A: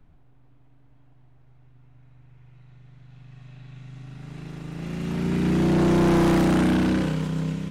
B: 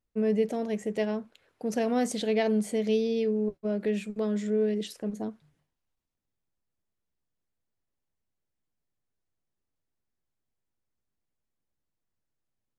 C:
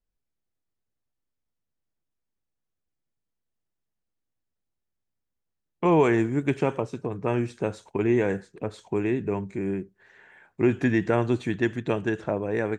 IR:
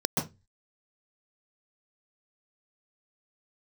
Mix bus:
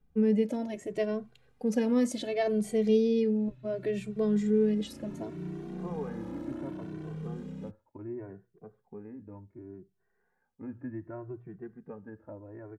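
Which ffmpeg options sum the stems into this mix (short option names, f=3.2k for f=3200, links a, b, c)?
-filter_complex "[0:a]acrossover=split=210|1600[a][b][c];[a]acompressor=threshold=-35dB:ratio=4[d];[b]acompressor=threshold=-29dB:ratio=4[e];[c]acompressor=threshold=-49dB:ratio=4[f];[d][e][f]amix=inputs=3:normalize=0,volume=-14dB,asplit=2[g][h];[h]volume=-23.5dB[i];[1:a]volume=-1dB[j];[2:a]lowpass=f=1.5k:w=0.5412,lowpass=f=1.5k:w=1.3066,bandreject=f=60:t=h:w=6,bandreject=f=120:t=h:w=6,volume=-18dB[k];[3:a]atrim=start_sample=2205[l];[i][l]afir=irnorm=-1:irlink=0[m];[g][j][k][m]amix=inputs=4:normalize=0,lowshelf=f=430:g=5.5,asplit=2[n][o];[o]adelay=2.1,afreqshift=0.68[p];[n][p]amix=inputs=2:normalize=1"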